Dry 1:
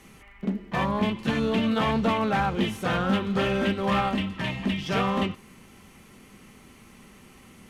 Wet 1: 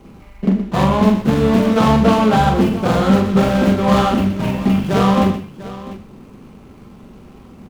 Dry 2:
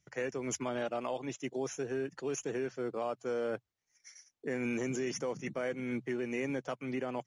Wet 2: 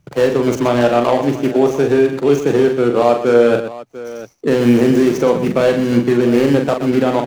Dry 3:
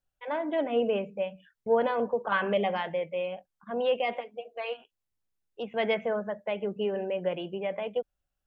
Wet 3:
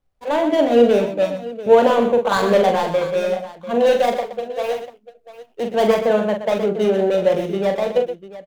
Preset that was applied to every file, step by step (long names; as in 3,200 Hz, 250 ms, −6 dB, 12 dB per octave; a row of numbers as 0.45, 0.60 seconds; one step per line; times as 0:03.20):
running median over 25 samples
on a send: multi-tap delay 42/123/695 ms −5.5/−10/−15.5 dB
on the sum: normalise the peak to −1.5 dBFS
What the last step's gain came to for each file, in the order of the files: +11.0, +22.0, +12.5 decibels